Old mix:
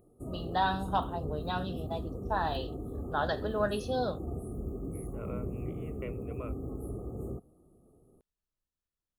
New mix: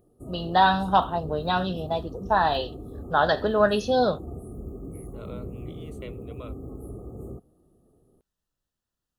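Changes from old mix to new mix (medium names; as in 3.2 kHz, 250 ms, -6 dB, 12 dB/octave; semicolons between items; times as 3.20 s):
first voice +10.0 dB; second voice: remove Chebyshev low-pass 2.6 kHz, order 5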